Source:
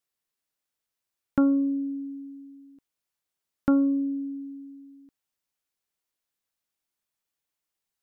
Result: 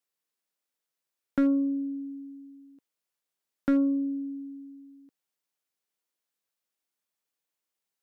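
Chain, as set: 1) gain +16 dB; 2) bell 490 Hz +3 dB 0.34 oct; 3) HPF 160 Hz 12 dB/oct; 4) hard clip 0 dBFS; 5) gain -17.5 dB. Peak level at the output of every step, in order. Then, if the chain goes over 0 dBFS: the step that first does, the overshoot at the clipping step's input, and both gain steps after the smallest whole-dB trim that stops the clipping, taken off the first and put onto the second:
+1.5, +2.0, +5.5, 0.0, -17.5 dBFS; step 1, 5.5 dB; step 1 +10 dB, step 5 -11.5 dB

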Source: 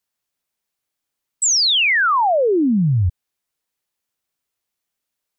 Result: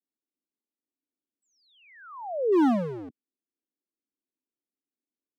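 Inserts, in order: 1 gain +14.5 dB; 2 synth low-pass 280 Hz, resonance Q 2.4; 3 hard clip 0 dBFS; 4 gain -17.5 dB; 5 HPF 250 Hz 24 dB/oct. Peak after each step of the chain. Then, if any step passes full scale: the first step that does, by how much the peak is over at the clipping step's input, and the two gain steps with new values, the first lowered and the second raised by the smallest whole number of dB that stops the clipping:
+1.5, +9.5, 0.0, -17.5, -16.5 dBFS; step 1, 9.5 dB; step 1 +4.5 dB, step 4 -7.5 dB

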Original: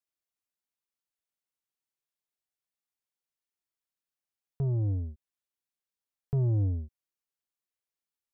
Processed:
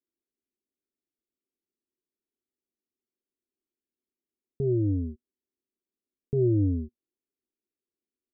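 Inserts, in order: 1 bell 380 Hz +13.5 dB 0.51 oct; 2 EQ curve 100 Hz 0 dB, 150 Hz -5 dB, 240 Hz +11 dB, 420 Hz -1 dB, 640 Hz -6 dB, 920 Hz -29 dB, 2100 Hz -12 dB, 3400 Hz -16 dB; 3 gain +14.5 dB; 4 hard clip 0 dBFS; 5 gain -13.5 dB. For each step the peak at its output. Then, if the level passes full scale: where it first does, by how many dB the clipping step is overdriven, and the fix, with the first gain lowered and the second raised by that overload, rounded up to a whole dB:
-17.5, -17.0, -2.5, -2.5, -16.0 dBFS; no overload

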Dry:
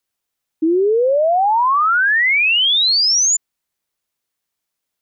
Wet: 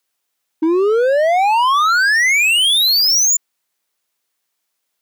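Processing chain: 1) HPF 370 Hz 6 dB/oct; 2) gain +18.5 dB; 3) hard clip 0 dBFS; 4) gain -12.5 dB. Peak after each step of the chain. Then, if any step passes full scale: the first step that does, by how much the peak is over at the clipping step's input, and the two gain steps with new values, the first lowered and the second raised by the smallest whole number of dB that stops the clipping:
-11.5, +7.0, 0.0, -12.5 dBFS; step 2, 7.0 dB; step 2 +11.5 dB, step 4 -5.5 dB

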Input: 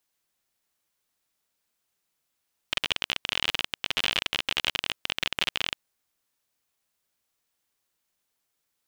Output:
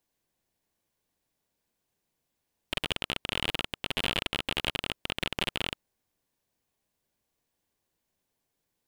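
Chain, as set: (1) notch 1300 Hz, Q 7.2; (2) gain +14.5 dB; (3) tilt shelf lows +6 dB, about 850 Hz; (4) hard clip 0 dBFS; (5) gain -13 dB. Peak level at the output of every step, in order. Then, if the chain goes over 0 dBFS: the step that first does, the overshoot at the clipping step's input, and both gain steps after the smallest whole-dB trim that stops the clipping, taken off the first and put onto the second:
-5.0, +9.5, +6.5, 0.0, -13.0 dBFS; step 2, 6.5 dB; step 2 +7.5 dB, step 5 -6 dB

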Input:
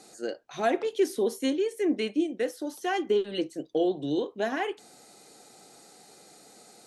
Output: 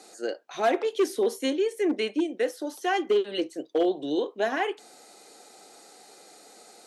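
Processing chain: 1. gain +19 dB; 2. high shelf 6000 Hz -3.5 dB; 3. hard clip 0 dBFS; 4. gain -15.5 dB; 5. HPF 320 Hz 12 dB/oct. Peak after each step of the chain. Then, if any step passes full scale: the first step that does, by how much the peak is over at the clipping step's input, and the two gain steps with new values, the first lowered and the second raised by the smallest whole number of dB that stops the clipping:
+6.0, +6.0, 0.0, -15.5, -12.0 dBFS; step 1, 6.0 dB; step 1 +13 dB, step 4 -9.5 dB

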